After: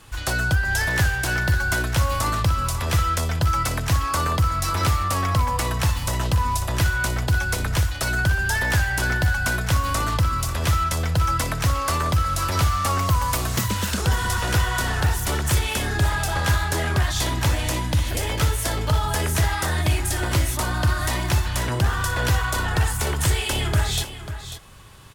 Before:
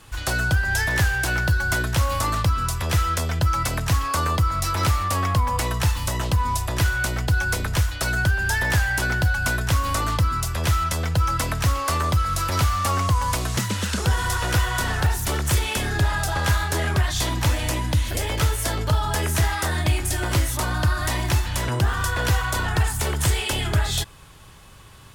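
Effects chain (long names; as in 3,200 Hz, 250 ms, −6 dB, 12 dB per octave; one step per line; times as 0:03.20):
0:12.99–0:14.02: parametric band 15,000 Hz +12 dB 0.37 octaves
single-tap delay 543 ms −11.5 dB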